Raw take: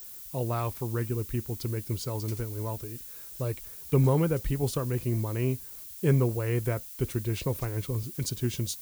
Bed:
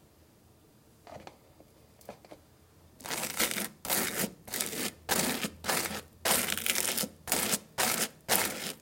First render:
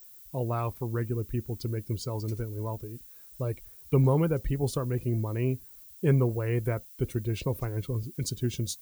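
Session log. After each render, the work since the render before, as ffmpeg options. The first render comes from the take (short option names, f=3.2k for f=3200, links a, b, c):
-af "afftdn=nr=10:nf=-44"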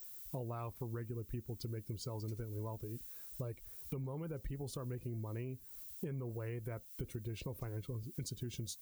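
-af "alimiter=limit=-21.5dB:level=0:latency=1,acompressor=threshold=-39dB:ratio=10"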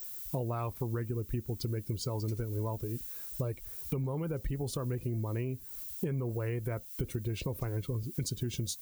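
-af "volume=8dB"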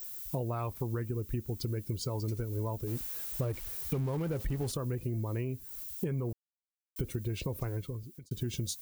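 -filter_complex "[0:a]asettb=1/sr,asplit=3[a][b][c];[a]atrim=end=2.874[d];[b]atrim=start=2.87:end=4.72,asetpts=PTS-STARTPTS,afade=t=in:d=0.004:c=qsin,afade=t=out:st=1.846:d=0.004:c=qsin,aeval=exprs='val(0)+0.5*0.00841*sgn(val(0))':c=same[e];[c]atrim=start=4.716[f];[d][e]acrossfade=d=0.004:c1=hsin:c2=qsin[g];[g][f]acrossfade=d=0.004:c1=qsin:c2=hsin,asplit=4[h][i][j][k];[h]atrim=end=6.33,asetpts=PTS-STARTPTS,afade=t=out:st=6.326:d=0.004:c=hsin[l];[i]atrim=start=6.33:end=6.96,asetpts=PTS-STARTPTS,volume=0[m];[j]atrim=start=6.96:end=8.31,asetpts=PTS-STARTPTS,afade=t=in:d=0.004:c=hsin,afade=t=out:st=0.71:d=0.64[n];[k]atrim=start=8.31,asetpts=PTS-STARTPTS,afade=t=in:d=0.004:c=hsin[o];[l][m][n][o]concat=n=4:v=0:a=1"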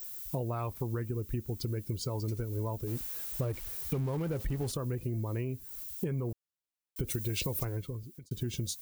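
-filter_complex "[0:a]asplit=3[a][b][c];[a]afade=t=out:st=7.07:d=0.02[d];[b]highshelf=f=2.4k:g=11.5,afade=t=in:st=7.07:d=0.02,afade=t=out:st=7.63:d=0.02[e];[c]afade=t=in:st=7.63:d=0.02[f];[d][e][f]amix=inputs=3:normalize=0"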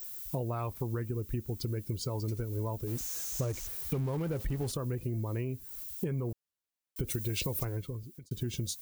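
-filter_complex "[0:a]asettb=1/sr,asplit=3[a][b][c];[a]atrim=end=2.984[d];[b]atrim=start=2.98:end=3.67,asetpts=PTS-STARTPTS,afade=t=in:d=0.004:c=qsin,afade=t=out:st=0.686:d=0.004:c=qsin,equalizer=f=6.4k:t=o:w=0.65:g=15[e];[c]atrim=start=3.666[f];[d][e]acrossfade=d=0.004:c1=hsin:c2=qsin[g];[g][f]acrossfade=d=0.004:c1=qsin:c2=hsin"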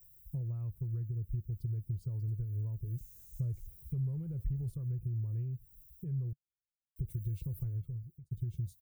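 -af "firequalizer=gain_entry='entry(140,0);entry(250,-23);entry(350,-17);entry(750,-29);entry(6000,-30);entry(9200,-20);entry(14000,-17)':delay=0.05:min_phase=1"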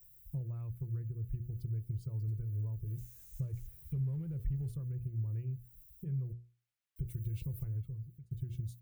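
-af "equalizer=f=2.2k:t=o:w=1.7:g=7.5,bandreject=f=60:t=h:w=6,bandreject=f=120:t=h:w=6,bandreject=f=180:t=h:w=6,bandreject=f=240:t=h:w=6,bandreject=f=300:t=h:w=6,bandreject=f=360:t=h:w=6,bandreject=f=420:t=h:w=6,bandreject=f=480:t=h:w=6"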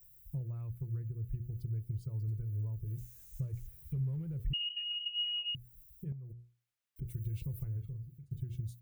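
-filter_complex "[0:a]asettb=1/sr,asplit=3[a][b][c];[a]atrim=end=4.534[d];[b]atrim=start=4.53:end=5.55,asetpts=PTS-STARTPTS,afade=t=in:d=0.004:c=qsin,afade=t=out:st=1.016:d=0.004:c=qsin,lowpass=f=2.6k:t=q:w=0.5098,lowpass=f=2.6k:t=q:w=0.6013,lowpass=f=2.6k:t=q:w=0.9,lowpass=f=2.6k:t=q:w=2.563,afreqshift=-3000[e];[c]atrim=start=5.546[f];[d][e]acrossfade=d=0.004:c1=hsin:c2=qsin[g];[g][f]acrossfade=d=0.004:c1=qsin:c2=hsin,asettb=1/sr,asplit=3[h][i][j];[h]atrim=end=6.124[k];[i]atrim=start=6.12:end=7.02,asetpts=PTS-STARTPTS,afade=t=in:d=0.004:c=qsin,afade=t=out:st=0.896:d=0.004:c=qsin,acompressor=threshold=-44dB:ratio=6:attack=3.2:release=140:knee=1:detection=peak[l];[j]atrim=start=7.016[m];[k][l]acrossfade=d=0.004:c1=hsin:c2=qsin[n];[n][m]acrossfade=d=0.004:c1=qsin:c2=hsin,asettb=1/sr,asplit=3[o][p][q];[o]atrim=end=7.734[r];[p]atrim=start=7.73:end=8.4,asetpts=PTS-STARTPTS,afade=t=in:d=0.004:c=qsin,afade=t=out:st=0.666:d=0.004:c=qsin,asplit=2[s][t];[t]adelay=42,volume=-9dB[u];[s][u]amix=inputs=2:normalize=0,atrim=end_sample=29547[v];[q]atrim=start=8.396[w];[r][v]acrossfade=d=0.004:c1=hsin:c2=qsin[x];[x][w]acrossfade=d=0.004:c1=qsin:c2=hsin"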